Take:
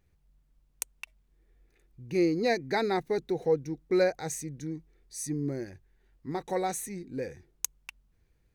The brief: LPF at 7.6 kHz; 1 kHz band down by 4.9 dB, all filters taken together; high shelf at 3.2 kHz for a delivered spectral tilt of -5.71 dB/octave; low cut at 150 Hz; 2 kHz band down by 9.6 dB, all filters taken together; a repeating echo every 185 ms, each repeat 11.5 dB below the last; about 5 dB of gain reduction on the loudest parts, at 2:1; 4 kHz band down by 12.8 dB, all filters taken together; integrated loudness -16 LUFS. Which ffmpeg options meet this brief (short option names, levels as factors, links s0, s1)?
-af "highpass=150,lowpass=7600,equalizer=f=1000:t=o:g=-5.5,equalizer=f=2000:t=o:g=-6,highshelf=f=3200:g=-8.5,equalizer=f=4000:t=o:g=-6.5,acompressor=threshold=0.0282:ratio=2,aecho=1:1:185|370|555:0.266|0.0718|0.0194,volume=10"